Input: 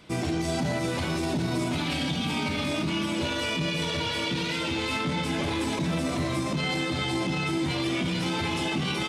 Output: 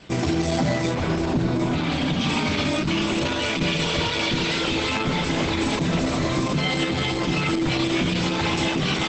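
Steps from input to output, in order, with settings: 0.92–2.19 s: treble shelf 2.3 kHz -> 3.6 kHz -10 dB; 3.70–4.72 s: upward compressor, threshold -45 dBFS; trim +6 dB; Opus 10 kbps 48 kHz

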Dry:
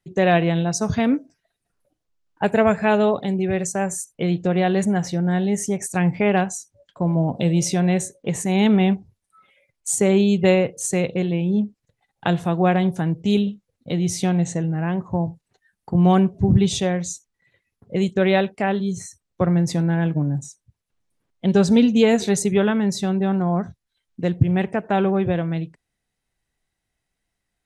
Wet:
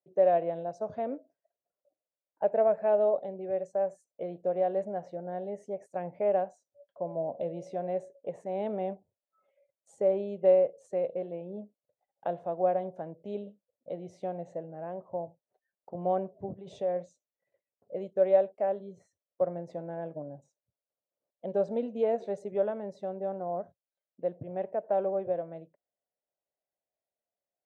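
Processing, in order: 16.53–17.06 s: compressor with a negative ratio -22 dBFS, ratio -1; band-pass filter 590 Hz, Q 5.7

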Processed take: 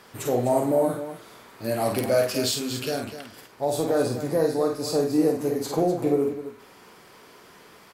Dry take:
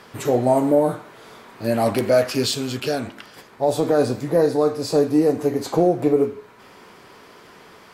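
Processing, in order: treble shelf 7.2 kHz +9 dB; loudspeakers at several distances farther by 17 m -5 dB, 86 m -11 dB; trim -6 dB

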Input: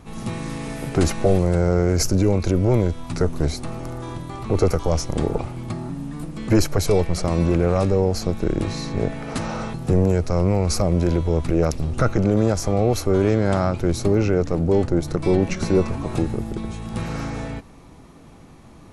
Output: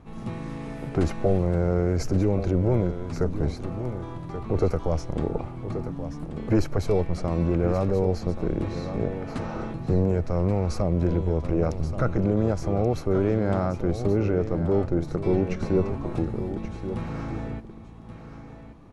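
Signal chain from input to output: low-pass 1.7 kHz 6 dB/octave; on a send: delay 1130 ms -10.5 dB; on the sum: trim -4.5 dB

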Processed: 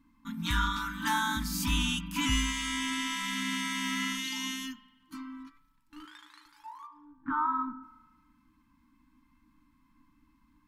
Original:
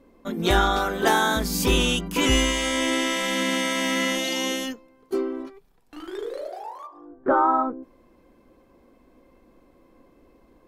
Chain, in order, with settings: FFT band-reject 320–850 Hz; 6.05–6.46 s: frequency weighting A; spring tank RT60 1.2 s, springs 36 ms, chirp 45 ms, DRR 14.5 dB; trim -7.5 dB

